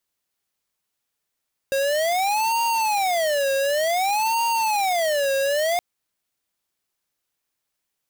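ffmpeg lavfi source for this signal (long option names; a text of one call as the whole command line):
ffmpeg -f lavfi -i "aevalsrc='0.0841*(2*lt(mod((735.5*t-192.5/(2*PI*0.55)*sin(2*PI*0.55*t)),1),0.5)-1)':duration=4.07:sample_rate=44100" out.wav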